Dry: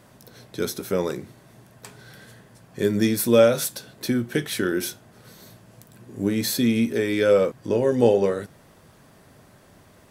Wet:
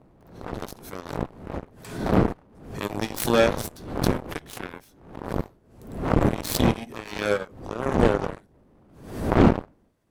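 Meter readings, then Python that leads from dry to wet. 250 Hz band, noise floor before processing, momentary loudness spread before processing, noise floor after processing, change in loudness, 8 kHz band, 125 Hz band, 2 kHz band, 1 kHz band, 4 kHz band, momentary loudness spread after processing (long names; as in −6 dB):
−1.0 dB, −53 dBFS, 13 LU, −59 dBFS, −3.0 dB, −5.5 dB, +4.5 dB, 0.0 dB, +6.0 dB, −3.0 dB, 19 LU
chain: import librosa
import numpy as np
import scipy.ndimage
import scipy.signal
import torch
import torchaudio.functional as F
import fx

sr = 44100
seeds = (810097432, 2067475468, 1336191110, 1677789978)

y = fx.dmg_wind(x, sr, seeds[0], corner_hz=320.0, level_db=-23.0)
y = fx.cheby_harmonics(y, sr, harmonics=(7,), levels_db=(-16,), full_scale_db=-2.0)
y = fx.pre_swell(y, sr, db_per_s=81.0)
y = y * librosa.db_to_amplitude(-3.5)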